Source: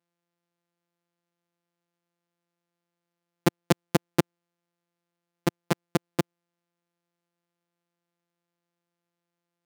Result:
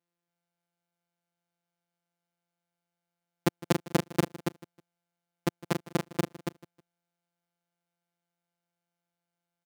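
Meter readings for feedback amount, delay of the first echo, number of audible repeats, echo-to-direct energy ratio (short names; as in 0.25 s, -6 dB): no steady repeat, 0.158 s, 4, -5.0 dB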